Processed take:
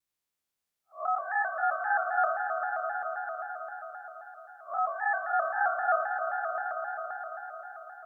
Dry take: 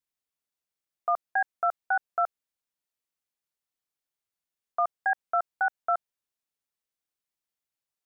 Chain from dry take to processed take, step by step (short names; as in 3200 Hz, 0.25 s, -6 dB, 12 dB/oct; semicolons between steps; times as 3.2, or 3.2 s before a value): time blur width 0.157 s; swelling echo 0.11 s, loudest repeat 5, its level -12.5 dB; shaped vibrato square 3.8 Hz, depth 100 cents; gain +4.5 dB